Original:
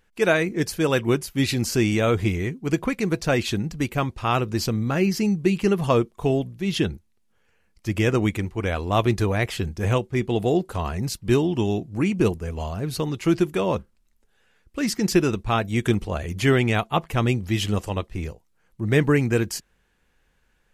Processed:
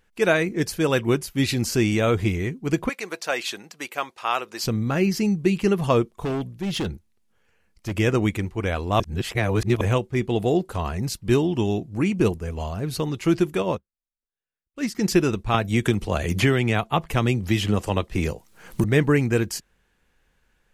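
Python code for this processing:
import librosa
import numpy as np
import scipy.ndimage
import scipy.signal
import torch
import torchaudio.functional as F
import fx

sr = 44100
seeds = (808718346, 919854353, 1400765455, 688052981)

y = fx.highpass(x, sr, hz=630.0, slope=12, at=(2.89, 4.64))
y = fx.overload_stage(y, sr, gain_db=22.5, at=(6.09, 7.97))
y = fx.upward_expand(y, sr, threshold_db=-42.0, expansion=2.5, at=(13.62, 14.95))
y = fx.band_squash(y, sr, depth_pct=100, at=(15.54, 18.84))
y = fx.edit(y, sr, fx.reverse_span(start_s=9.0, length_s=0.81), tone=tone)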